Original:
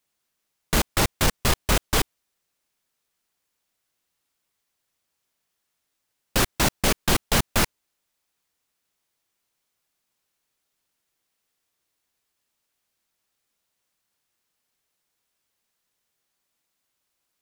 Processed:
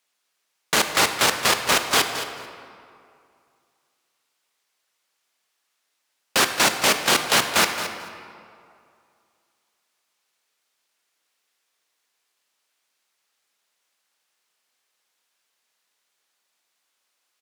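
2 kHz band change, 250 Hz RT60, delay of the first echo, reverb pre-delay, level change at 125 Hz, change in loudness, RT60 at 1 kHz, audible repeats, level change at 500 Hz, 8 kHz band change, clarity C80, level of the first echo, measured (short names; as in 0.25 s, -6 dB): +6.5 dB, 2.3 s, 0.22 s, 20 ms, -11.0 dB, +3.5 dB, 2.4 s, 1, +2.5 dB, +4.0 dB, 7.0 dB, -12.0 dB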